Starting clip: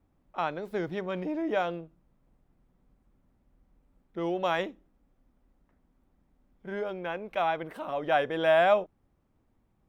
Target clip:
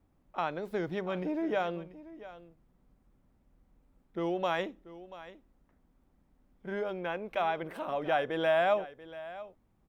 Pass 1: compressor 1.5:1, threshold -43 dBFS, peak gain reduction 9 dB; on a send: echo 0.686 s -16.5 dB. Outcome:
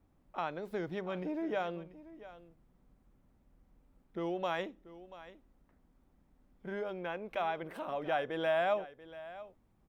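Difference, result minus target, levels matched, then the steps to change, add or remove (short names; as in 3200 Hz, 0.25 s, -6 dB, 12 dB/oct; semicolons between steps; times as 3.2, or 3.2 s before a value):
compressor: peak gain reduction +4 dB
change: compressor 1.5:1, threshold -31 dBFS, peak gain reduction 5 dB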